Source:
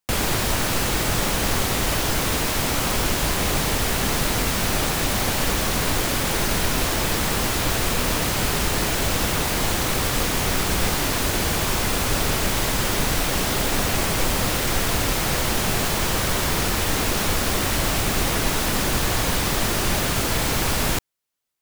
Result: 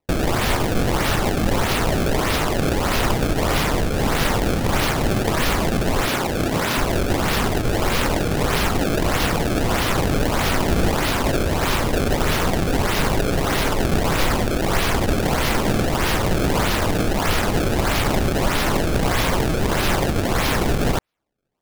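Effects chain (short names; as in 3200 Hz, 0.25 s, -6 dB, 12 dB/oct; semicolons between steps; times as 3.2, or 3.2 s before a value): 6.09–6.78 HPF 140 Hz; decimation with a swept rate 26×, swing 160% 1.6 Hz; gain +2.5 dB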